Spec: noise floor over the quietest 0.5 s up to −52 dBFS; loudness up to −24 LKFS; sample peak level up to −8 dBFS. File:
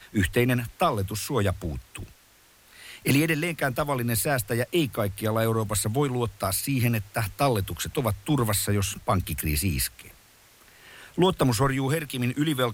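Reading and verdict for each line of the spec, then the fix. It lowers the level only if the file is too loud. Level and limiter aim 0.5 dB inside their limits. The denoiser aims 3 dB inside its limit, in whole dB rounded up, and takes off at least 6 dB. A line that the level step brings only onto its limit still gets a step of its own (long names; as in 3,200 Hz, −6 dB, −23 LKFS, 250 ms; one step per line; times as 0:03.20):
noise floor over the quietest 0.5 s −57 dBFS: in spec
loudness −26.0 LKFS: in spec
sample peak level −11.0 dBFS: in spec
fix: no processing needed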